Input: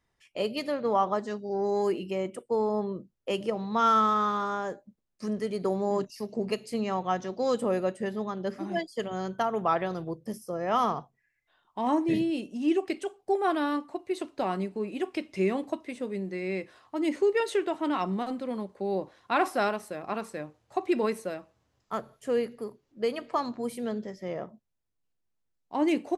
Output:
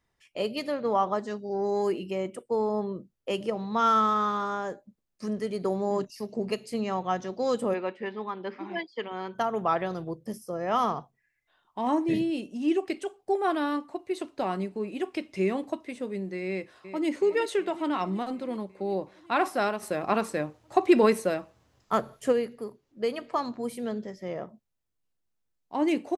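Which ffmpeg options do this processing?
ffmpeg -i in.wav -filter_complex "[0:a]asplit=3[link_01][link_02][link_03];[link_01]afade=type=out:start_time=7.73:duration=0.02[link_04];[link_02]highpass=290,equalizer=frequency=630:width_type=q:width=4:gain=-9,equalizer=frequency=940:width_type=q:width=4:gain=7,equalizer=frequency=2300:width_type=q:width=4:gain=8,lowpass=frequency=4100:width=0.5412,lowpass=frequency=4100:width=1.3066,afade=type=in:start_time=7.73:duration=0.02,afade=type=out:start_time=9.34:duration=0.02[link_05];[link_03]afade=type=in:start_time=9.34:duration=0.02[link_06];[link_04][link_05][link_06]amix=inputs=3:normalize=0,asplit=2[link_07][link_08];[link_08]afade=type=in:start_time=16.47:duration=0.01,afade=type=out:start_time=17.08:duration=0.01,aecho=0:1:370|740|1110|1480|1850|2220|2590|2960|3330|3700:0.251189|0.175832|0.123082|0.0861577|0.0603104|0.0422173|0.0295521|0.0206865|0.0144805|0.0101364[link_09];[link_07][link_09]amix=inputs=2:normalize=0,asplit=3[link_10][link_11][link_12];[link_10]afade=type=out:start_time=19.81:duration=0.02[link_13];[link_11]acontrast=89,afade=type=in:start_time=19.81:duration=0.02,afade=type=out:start_time=22.31:duration=0.02[link_14];[link_12]afade=type=in:start_time=22.31:duration=0.02[link_15];[link_13][link_14][link_15]amix=inputs=3:normalize=0" out.wav

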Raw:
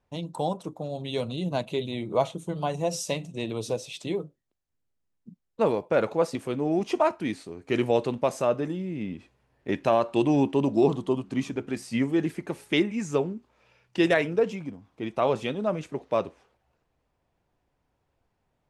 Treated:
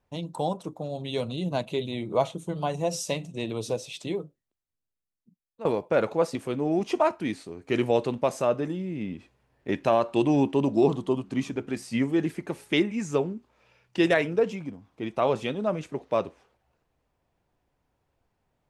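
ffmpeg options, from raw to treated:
ffmpeg -i in.wav -filter_complex "[0:a]asplit=2[link_01][link_02];[link_01]atrim=end=5.65,asetpts=PTS-STARTPTS,afade=type=out:start_time=4.02:duration=1.63:curve=qua:silence=0.158489[link_03];[link_02]atrim=start=5.65,asetpts=PTS-STARTPTS,afade=type=in:duration=0.004:curve=hsin:silence=0.158489[link_04];[link_03][link_04]concat=n=2:v=0:a=1" out.wav

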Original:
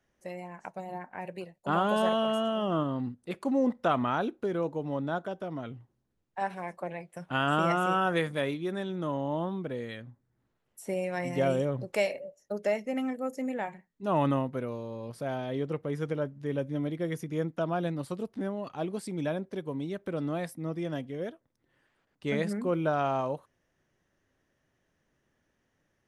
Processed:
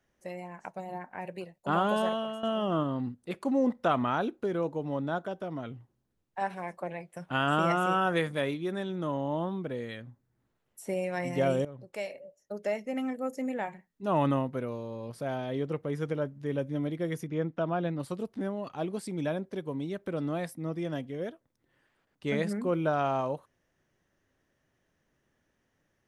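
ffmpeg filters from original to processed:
ffmpeg -i in.wav -filter_complex "[0:a]asettb=1/sr,asplit=3[link_01][link_02][link_03];[link_01]atrim=end=17.274[link_04];[link_02]atrim=start=17.27:end=18,asetpts=PTS-STARTPTS,afade=type=in:duration=0.004:curve=qsin,afade=type=out:start_time=0.726:duration=0.004:curve=qsin,lowpass=3600[link_05];[link_03]atrim=start=17.996[link_06];[link_04][link_05]acrossfade=duration=0.004:curve1=hsin:curve2=qsin[link_07];[link_07][link_06]acrossfade=duration=0.004:curve1=qsin:curve2=hsin,asplit=3[link_08][link_09][link_10];[link_08]atrim=end=2.43,asetpts=PTS-STARTPTS,afade=type=out:start_time=1.87:duration=0.56:silence=0.237137[link_11];[link_09]atrim=start=2.43:end=11.65,asetpts=PTS-STARTPTS,afade=type=in:duration=0.004:curve=hsin:silence=0.237137,afade=type=out:start_time=9.216:duration=0.004:curve=hsin:silence=0.177828[link_12];[link_10]atrim=start=11.65,asetpts=PTS-STARTPTS,afade=type=in:duration=1.59:silence=0.177828[link_13];[link_11][link_12][link_13]concat=n=3:v=0:a=1" out.wav

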